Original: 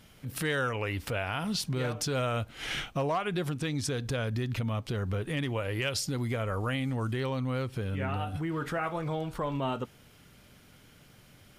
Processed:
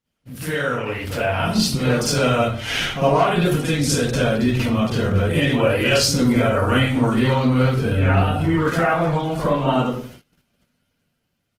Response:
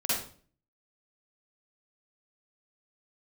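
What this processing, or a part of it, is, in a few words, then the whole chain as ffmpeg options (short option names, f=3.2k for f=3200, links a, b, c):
speakerphone in a meeting room: -filter_complex "[0:a]asettb=1/sr,asplit=3[a][b][c];[a]atrim=end=3.214[d];[b]atrim=start=3.21:end=4.03,asetpts=PTS-STARTPTS,afade=t=in:d=0.004:c=qsin,afade=t=out:st=0.816:d=0.004:c=qsin,highshelf=f=7.8k:g=4[e];[c]atrim=start=4.026[f];[d][e]acrossfade=d=0.004:c1=hsin:c2=qsin[g];[g][f]acrossfade=d=0.004:c1=qsin:c2=hsin,asplit=2[h][i];[i]adelay=115,lowpass=f=820:p=1,volume=-20.5dB,asplit=2[j][k];[k]adelay=115,lowpass=f=820:p=1,volume=0.39,asplit=2[l][m];[m]adelay=115,lowpass=f=820:p=1,volume=0.39[n];[h][j][l][n]amix=inputs=4:normalize=0[o];[1:a]atrim=start_sample=2205[p];[o][p]afir=irnorm=-1:irlink=0,dynaudnorm=f=210:g=11:m=9dB,agate=range=-25dB:threshold=-37dB:ratio=16:detection=peak,volume=-2dB" -ar 48000 -c:a libopus -b:a 16k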